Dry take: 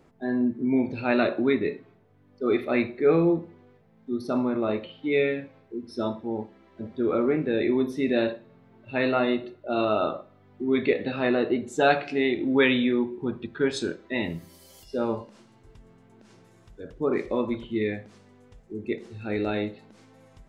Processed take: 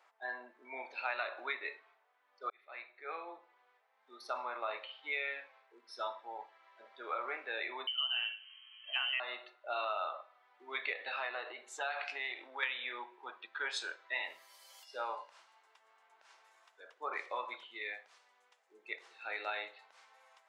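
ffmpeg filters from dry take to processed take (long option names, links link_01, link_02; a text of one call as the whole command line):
ffmpeg -i in.wav -filter_complex "[0:a]asettb=1/sr,asplit=3[link_01][link_02][link_03];[link_01]atrim=end=7.874[link_04];[link_02]atrim=start=7.87:end=9.2,asetpts=PTS-STARTPTS,afade=type=in:duration=0.004:curve=qsin,afade=type=out:start_time=1.326:duration=0.004:curve=qsin,lowpass=frequency=2800:width_type=q:width=0.5098,lowpass=frequency=2800:width_type=q:width=0.6013,lowpass=frequency=2800:width_type=q:width=0.9,lowpass=frequency=2800:width_type=q:width=2.563,afreqshift=-3300[link_05];[link_03]atrim=start=9.196[link_06];[link_04][link_05]acrossfade=duration=0.004:curve1=hsin:curve2=qsin[link_07];[link_07][link_06]acrossfade=duration=0.004:curve1=qsin:curve2=hsin,asettb=1/sr,asplit=3[link_08][link_09][link_10];[link_08]atrim=end=11.084[link_11];[link_09]atrim=start=11.08:end=12.63,asetpts=PTS-STARTPTS,afade=type=in:duration=0.004:curve=qsin,afade=type=out:start_time=1.546:duration=0.004:curve=qsin,acompressor=threshold=-24dB:ratio=6:attack=3.2:release=140:knee=1:detection=peak[link_12];[link_10]atrim=start=12.626[link_13];[link_11][link_12]acrossfade=duration=0.004:curve1=hsin:curve2=qsin[link_14];[link_14][link_13]acrossfade=duration=0.004:curve1=qsin:curve2=hsin,asettb=1/sr,asplit=3[link_15][link_16][link_17];[link_15]atrim=end=17.614[link_18];[link_16]atrim=start=17.61:end=18.88,asetpts=PTS-STARTPTS,afade=type=in:duration=0.004:curve=qsin,afade=type=out:start_time=1.266:duration=0.004:curve=qsin,equalizer=frequency=1100:width=0.48:gain=-4[link_19];[link_17]atrim=start=18.876[link_20];[link_18][link_19]acrossfade=duration=0.004:curve1=hsin:curve2=qsin[link_21];[link_21][link_20]acrossfade=duration=0.004:curve1=qsin:curve2=hsin,asplit=2[link_22][link_23];[link_22]atrim=end=2.5,asetpts=PTS-STARTPTS,afade=type=out:start_time=2.496:duration=0.004:curve=hsin[link_24];[link_23]atrim=start=2.5,asetpts=PTS-STARTPTS,afade=type=in:duration=1.6[link_25];[link_24][link_25]concat=n=2:v=0:a=1,highpass=frequency=810:width=0.5412,highpass=frequency=810:width=1.3066,highshelf=frequency=6000:gain=-10.5,acompressor=threshold=-33dB:ratio=6" out.wav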